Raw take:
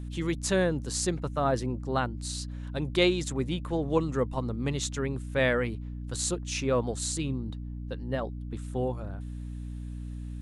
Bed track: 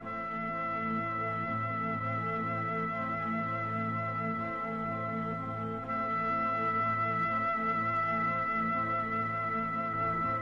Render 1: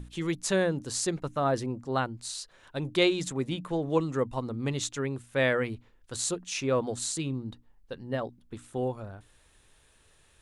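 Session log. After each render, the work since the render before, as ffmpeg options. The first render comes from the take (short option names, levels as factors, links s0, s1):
-af "bandreject=f=60:t=h:w=6,bandreject=f=120:t=h:w=6,bandreject=f=180:t=h:w=6,bandreject=f=240:t=h:w=6,bandreject=f=300:t=h:w=6"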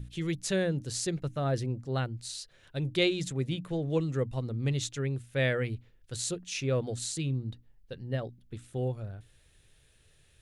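-af "equalizer=f=125:t=o:w=1:g=6,equalizer=f=250:t=o:w=1:g=-5,equalizer=f=1000:t=o:w=1:g=-12,equalizer=f=8000:t=o:w=1:g=-4"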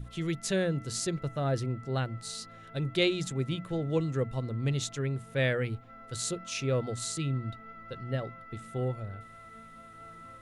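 -filter_complex "[1:a]volume=0.141[s0];[0:a][s0]amix=inputs=2:normalize=0"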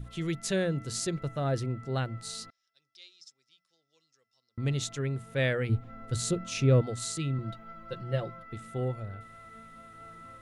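-filter_complex "[0:a]asettb=1/sr,asplit=3[s0][s1][s2];[s0]atrim=end=2.504[s3];[s1]atrim=start=2.5:end=4.58,asetpts=PTS-STARTPTS,afade=t=in:d=0.004:c=qsin,afade=t=out:st=2.076:d=0.004:c=qsin,bandpass=f=5300:t=q:w=12[s4];[s2]atrim=start=4.576[s5];[s3][s4]acrossfade=d=0.004:c1=hsin:c2=qsin[s6];[s6][s5]acrossfade=d=0.004:c1=qsin:c2=hsin,asettb=1/sr,asplit=3[s7][s8][s9];[s7]atrim=end=5.694[s10];[s8]atrim=start=5.69:end=6.82,asetpts=PTS-STARTPTS,afade=t=in:d=0.004:c=qsin,afade=t=out:st=1.126:d=0.004:c=qsin,lowshelf=f=360:g=10.5[s11];[s9]atrim=start=6.816[s12];[s10][s11]acrossfade=d=0.004:c1=hsin:c2=qsin[s13];[s13][s12]acrossfade=d=0.004:c1=qsin:c2=hsin,asettb=1/sr,asplit=3[s14][s15][s16];[s14]atrim=end=7.384[s17];[s15]atrim=start=7.38:end=8.43,asetpts=PTS-STARTPTS,afade=t=in:d=0.004:c=qsin,afade=t=out:st=1.046:d=0.004:c=qsin,aecho=1:1:5.8:0.77,atrim=end_sample=46305[s18];[s16]atrim=start=8.426[s19];[s17][s18]acrossfade=d=0.004:c1=hsin:c2=qsin[s20];[s20][s19]acrossfade=d=0.004:c1=qsin:c2=hsin"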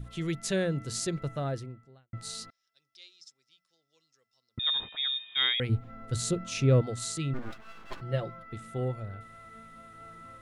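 -filter_complex "[0:a]asettb=1/sr,asplit=3[s0][s1][s2];[s0]atrim=end=4.594[s3];[s1]atrim=start=4.59:end=5.6,asetpts=PTS-STARTPTS,afade=t=in:d=0.004:c=qsin,afade=t=out:st=1.006:d=0.004:c=qsin,lowpass=f=3200:t=q:w=0.5098,lowpass=f=3200:t=q:w=0.6013,lowpass=f=3200:t=q:w=0.9,lowpass=f=3200:t=q:w=2.563,afreqshift=-3800[s4];[s2]atrim=start=5.596[s5];[s3][s4]acrossfade=d=0.004:c1=hsin:c2=qsin[s6];[s6][s5]acrossfade=d=0.004:c1=qsin:c2=hsin,asplit=3[s7][s8][s9];[s7]afade=t=out:st=7.33:d=0.02[s10];[s8]aeval=exprs='abs(val(0))':c=same,afade=t=in:st=7.33:d=0.02,afade=t=out:st=8:d=0.02[s11];[s9]afade=t=in:st=8:d=0.02[s12];[s10][s11][s12]amix=inputs=3:normalize=0,asplit=2[s13][s14];[s13]atrim=end=2.13,asetpts=PTS-STARTPTS,afade=t=out:st=1.35:d=0.78:c=qua[s15];[s14]atrim=start=2.13,asetpts=PTS-STARTPTS,afade=t=in:d=0.004:c=hsin[s16];[s15][s16]concat=n=2:v=0:a=1"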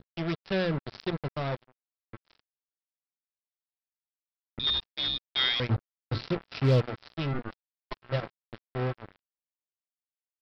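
-af "aresample=11025,acrusher=bits=4:mix=0:aa=0.5,aresample=44100,volume=5.96,asoftclip=hard,volume=0.168"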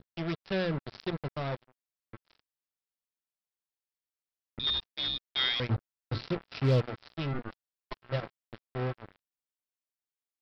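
-af "volume=0.75"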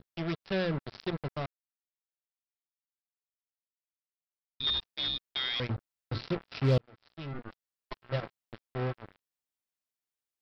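-filter_complex "[0:a]asettb=1/sr,asplit=3[s0][s1][s2];[s0]atrim=end=5.294[s3];[s1]atrim=start=5.29:end=6.16,asetpts=PTS-STARTPTS,afade=t=in:d=0.004:c=qsin,afade=t=out:st=0.866:d=0.004:c=qsin,acompressor=threshold=0.0398:ratio=6:attack=3.2:release=140:knee=1:detection=peak[s4];[s2]atrim=start=6.156[s5];[s3][s4]acrossfade=d=0.004:c1=hsin:c2=qsin[s6];[s6][s5]acrossfade=d=0.004:c1=qsin:c2=hsin,asplit=4[s7][s8][s9][s10];[s7]atrim=end=1.46,asetpts=PTS-STARTPTS,afade=t=out:st=1.456:d=0.004:c=hsin[s11];[s8]atrim=start=1.46:end=4.6,asetpts=PTS-STARTPTS,volume=0[s12];[s9]atrim=start=4.6:end=6.78,asetpts=PTS-STARTPTS,afade=t=in:d=0.004:c=hsin,afade=t=out:st=2.176:d=0.004:c=hsin[s13];[s10]atrim=start=6.78,asetpts=PTS-STARTPTS,afade=t=in:d=1.62:c=qsin[s14];[s11][s12][s13][s14]concat=n=4:v=0:a=1"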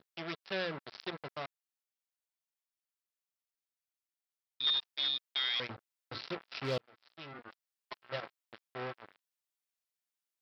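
-af "highpass=f=820:p=1"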